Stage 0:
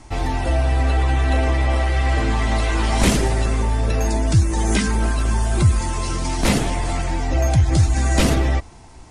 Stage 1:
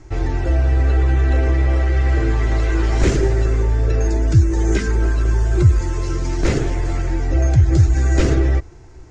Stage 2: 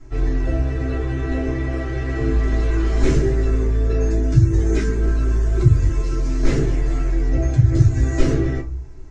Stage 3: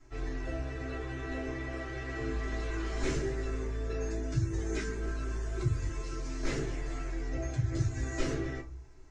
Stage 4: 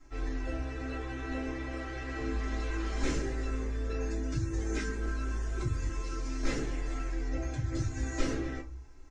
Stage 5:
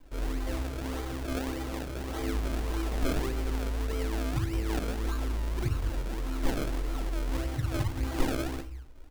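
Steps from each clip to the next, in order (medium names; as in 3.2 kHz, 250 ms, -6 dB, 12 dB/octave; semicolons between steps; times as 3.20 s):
FFT filter 130 Hz 0 dB, 220 Hz -12 dB, 360 Hz +4 dB, 700 Hz -9 dB, 1 kHz -11 dB, 1.5 kHz -3 dB, 3.3 kHz -12 dB, 7 kHz -7 dB, 10 kHz -29 dB; trim +3 dB
reverberation RT60 0.30 s, pre-delay 3 ms, DRR -8.5 dB; trim -13 dB
bass shelf 450 Hz -10.5 dB; trim -7 dB
comb 3.8 ms, depth 44%
decimation with a swept rate 32×, swing 100% 1.7 Hz; trim +2.5 dB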